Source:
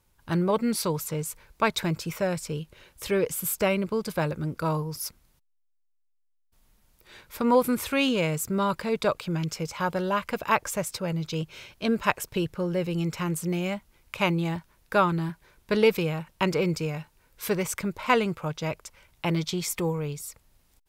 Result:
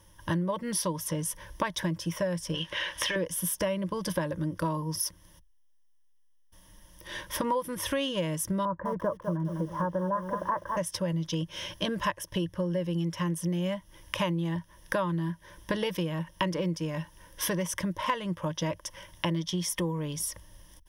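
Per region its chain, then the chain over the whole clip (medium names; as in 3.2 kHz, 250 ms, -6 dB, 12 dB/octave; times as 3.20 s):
2.54–3.16 s: peaking EQ 2.5 kHz +11.5 dB 2.8 oct + compression 4:1, threshold -31 dBFS + overdrive pedal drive 14 dB, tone 2.7 kHz, clips at -17.5 dBFS
8.65–10.77 s: steep low-pass 1.5 kHz + bit-crushed delay 203 ms, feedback 35%, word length 8-bit, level -9 dB
whole clip: rippled EQ curve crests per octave 1.2, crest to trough 14 dB; compression 5:1, threshold -37 dBFS; trim +8 dB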